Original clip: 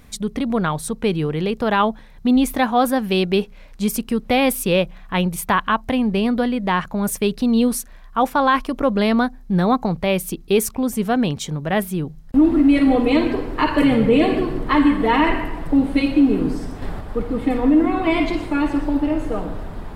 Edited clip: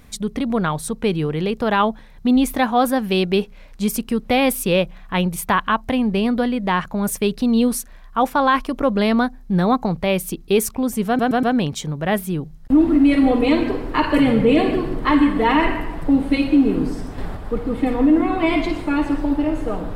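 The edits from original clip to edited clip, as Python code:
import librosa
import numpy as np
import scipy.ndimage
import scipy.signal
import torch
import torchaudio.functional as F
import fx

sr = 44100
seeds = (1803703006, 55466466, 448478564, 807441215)

y = fx.edit(x, sr, fx.stutter(start_s=11.07, slice_s=0.12, count=4), tone=tone)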